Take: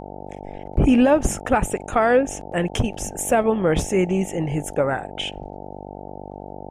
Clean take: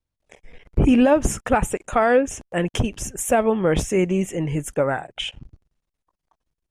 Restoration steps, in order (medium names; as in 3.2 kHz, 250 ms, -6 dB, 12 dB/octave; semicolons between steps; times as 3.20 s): de-hum 48.9 Hz, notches 18